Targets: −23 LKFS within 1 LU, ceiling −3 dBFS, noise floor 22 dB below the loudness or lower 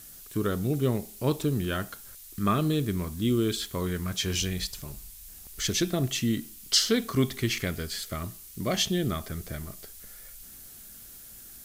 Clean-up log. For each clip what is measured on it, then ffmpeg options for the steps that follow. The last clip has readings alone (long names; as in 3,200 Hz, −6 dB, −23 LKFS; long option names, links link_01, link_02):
background noise floor −47 dBFS; target noise floor −51 dBFS; integrated loudness −28.5 LKFS; sample peak −10.5 dBFS; target loudness −23.0 LKFS
→ -af "afftdn=noise_reduction=6:noise_floor=-47"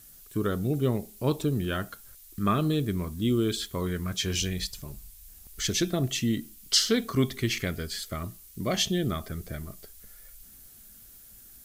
background noise floor −51 dBFS; integrated loudness −28.5 LKFS; sample peak −10.5 dBFS; target loudness −23.0 LKFS
→ -af "volume=5.5dB"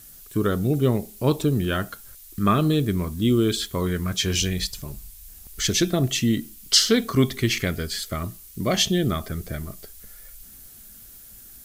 integrated loudness −23.0 LKFS; sample peak −5.0 dBFS; background noise floor −46 dBFS